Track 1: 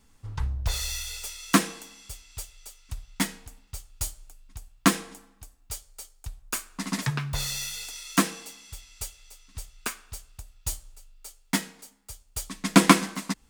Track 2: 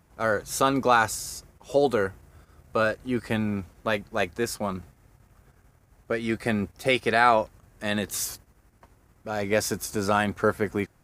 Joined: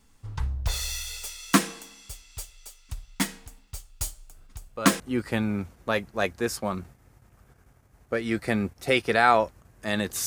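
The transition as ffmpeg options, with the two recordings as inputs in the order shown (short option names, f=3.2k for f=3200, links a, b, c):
-filter_complex "[1:a]asplit=2[a][b];[0:a]apad=whole_dur=10.26,atrim=end=10.26,atrim=end=5.002[c];[b]atrim=start=2.978:end=8.24[d];[a]atrim=start=2.28:end=2.98,asetpts=PTS-STARTPTS,volume=-9.5dB,afade=t=in:d=0.004:c=hsin,afade=t=out:st=0.696:d=0.004:c=hsin,adelay=4300[e];[c][d]acrossfade=d=0.004:c1=hsin:c2=hsin[f];[f][e]amix=inputs=2:normalize=0"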